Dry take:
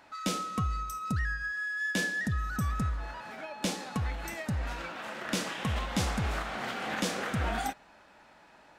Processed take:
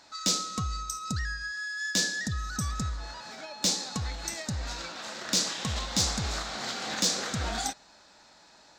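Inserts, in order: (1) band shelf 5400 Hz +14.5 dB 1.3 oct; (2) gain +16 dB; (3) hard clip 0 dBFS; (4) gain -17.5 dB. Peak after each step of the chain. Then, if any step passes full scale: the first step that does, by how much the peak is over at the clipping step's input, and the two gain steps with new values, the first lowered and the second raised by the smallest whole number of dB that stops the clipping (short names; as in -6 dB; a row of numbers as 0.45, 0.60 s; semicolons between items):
-8.0, +8.0, 0.0, -17.5 dBFS; step 2, 8.0 dB; step 2 +8 dB, step 4 -9.5 dB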